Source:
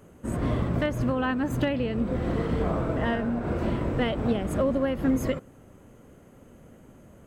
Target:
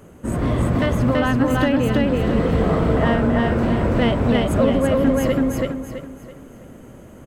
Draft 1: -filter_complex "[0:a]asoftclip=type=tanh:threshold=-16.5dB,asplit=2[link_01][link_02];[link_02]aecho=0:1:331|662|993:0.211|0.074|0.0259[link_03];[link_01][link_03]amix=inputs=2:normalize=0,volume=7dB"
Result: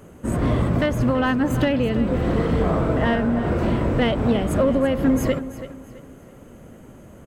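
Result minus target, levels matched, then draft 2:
echo-to-direct −12 dB
-filter_complex "[0:a]asoftclip=type=tanh:threshold=-16.5dB,asplit=2[link_01][link_02];[link_02]aecho=0:1:331|662|993|1324|1655:0.841|0.294|0.103|0.0361|0.0126[link_03];[link_01][link_03]amix=inputs=2:normalize=0,volume=7dB"

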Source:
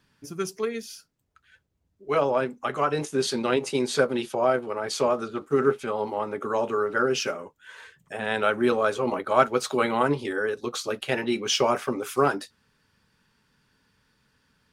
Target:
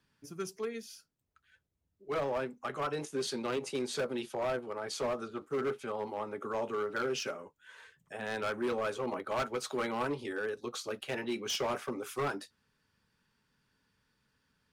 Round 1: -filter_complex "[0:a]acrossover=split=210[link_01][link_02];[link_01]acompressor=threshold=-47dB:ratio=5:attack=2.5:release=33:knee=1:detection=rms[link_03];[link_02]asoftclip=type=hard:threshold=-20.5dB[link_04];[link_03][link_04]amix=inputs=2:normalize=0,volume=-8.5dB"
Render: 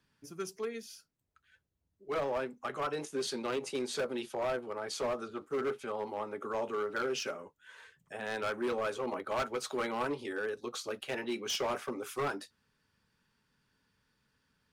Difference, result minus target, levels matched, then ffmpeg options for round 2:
downward compressor: peak gain reduction +7.5 dB
-filter_complex "[0:a]acrossover=split=210[link_01][link_02];[link_01]acompressor=threshold=-37.5dB:ratio=5:attack=2.5:release=33:knee=1:detection=rms[link_03];[link_02]asoftclip=type=hard:threshold=-20.5dB[link_04];[link_03][link_04]amix=inputs=2:normalize=0,volume=-8.5dB"

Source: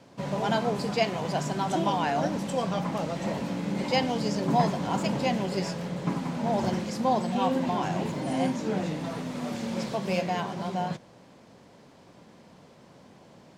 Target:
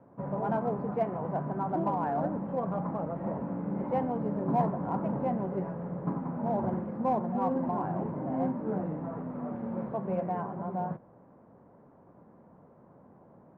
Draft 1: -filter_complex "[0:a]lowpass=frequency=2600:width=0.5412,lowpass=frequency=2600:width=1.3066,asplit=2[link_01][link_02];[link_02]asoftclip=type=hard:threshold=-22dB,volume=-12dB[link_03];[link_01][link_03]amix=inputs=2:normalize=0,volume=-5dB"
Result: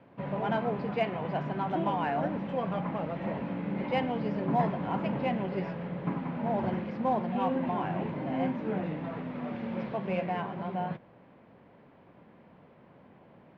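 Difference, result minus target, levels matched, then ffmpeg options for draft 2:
2,000 Hz band +9.5 dB
-filter_complex "[0:a]lowpass=frequency=1300:width=0.5412,lowpass=frequency=1300:width=1.3066,asplit=2[link_01][link_02];[link_02]asoftclip=type=hard:threshold=-22dB,volume=-12dB[link_03];[link_01][link_03]amix=inputs=2:normalize=0,volume=-5dB"

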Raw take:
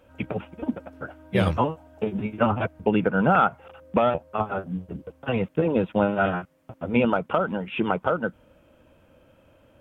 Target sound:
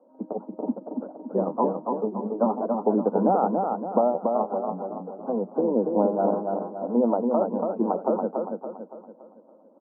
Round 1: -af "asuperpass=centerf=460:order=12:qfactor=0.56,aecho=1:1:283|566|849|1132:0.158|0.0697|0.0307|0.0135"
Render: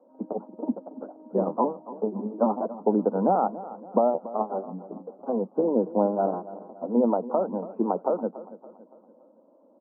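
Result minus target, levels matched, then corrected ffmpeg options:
echo-to-direct −12 dB
-af "asuperpass=centerf=460:order=12:qfactor=0.56,aecho=1:1:283|566|849|1132|1415|1698:0.631|0.278|0.122|0.0537|0.0236|0.0104"

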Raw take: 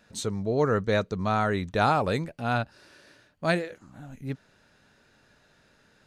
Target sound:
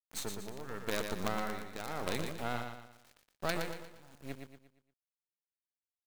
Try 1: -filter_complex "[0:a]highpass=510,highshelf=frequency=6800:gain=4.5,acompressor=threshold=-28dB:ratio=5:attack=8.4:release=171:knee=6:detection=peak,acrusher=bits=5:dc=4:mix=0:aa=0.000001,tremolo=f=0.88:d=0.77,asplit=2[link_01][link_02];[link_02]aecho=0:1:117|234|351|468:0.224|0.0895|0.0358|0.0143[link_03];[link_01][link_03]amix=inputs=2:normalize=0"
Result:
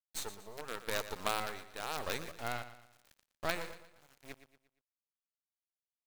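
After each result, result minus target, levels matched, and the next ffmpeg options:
250 Hz band −8.0 dB; echo-to-direct −7 dB
-filter_complex "[0:a]highpass=220,highshelf=frequency=6800:gain=4.5,acompressor=threshold=-28dB:ratio=5:attack=8.4:release=171:knee=6:detection=peak,acrusher=bits=5:dc=4:mix=0:aa=0.000001,tremolo=f=0.88:d=0.77,asplit=2[link_01][link_02];[link_02]aecho=0:1:117|234|351|468:0.224|0.0895|0.0358|0.0143[link_03];[link_01][link_03]amix=inputs=2:normalize=0"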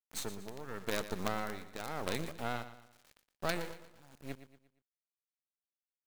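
echo-to-direct −7 dB
-filter_complex "[0:a]highpass=220,highshelf=frequency=6800:gain=4.5,acompressor=threshold=-28dB:ratio=5:attack=8.4:release=171:knee=6:detection=peak,acrusher=bits=5:dc=4:mix=0:aa=0.000001,tremolo=f=0.88:d=0.77,asplit=2[link_01][link_02];[link_02]aecho=0:1:117|234|351|468|585:0.501|0.2|0.0802|0.0321|0.0128[link_03];[link_01][link_03]amix=inputs=2:normalize=0"

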